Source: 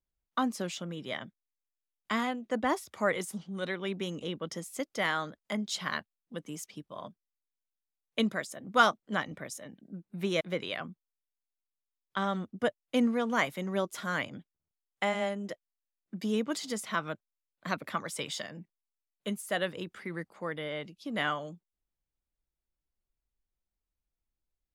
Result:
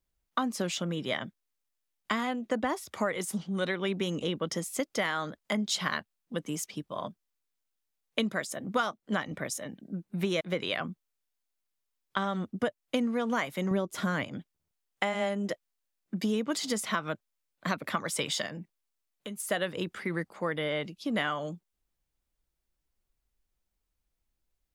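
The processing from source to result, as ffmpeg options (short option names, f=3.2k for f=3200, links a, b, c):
-filter_complex "[0:a]asettb=1/sr,asplit=3[a][b][c];[a]atrim=end=13.714[d];[b]atrim=start=13.71:end=14.24,asetpts=PTS-STARTPTS,afade=t=in:d=0.004:c=qsin,afade=t=out:st=0.526:d=0.004:c=qsin,lowshelf=f=500:g=9[e];[c]atrim=start=14.236[f];[d][e]acrossfade=d=0.004:c1=hsin:c2=qsin[g];[g][f]acrossfade=d=0.004:c1=qsin:c2=hsin,asettb=1/sr,asplit=3[h][i][j];[h]atrim=end=18.484[k];[i]atrim=start=18.48:end=19.4,asetpts=PTS-STARTPTS,afade=t=in:d=0.004:c=qsin,afade=t=out:st=0.916:d=0.004:c=qsin,acompressor=threshold=-43dB:ratio=6:attack=3.2:release=140:knee=1:detection=peak[l];[j]atrim=start=19.396[m];[k][l]acrossfade=d=0.004:c1=hsin:c2=qsin[n];[n][m]acrossfade=d=0.004:c1=qsin:c2=hsin,acompressor=threshold=-32dB:ratio=8,volume=6.5dB"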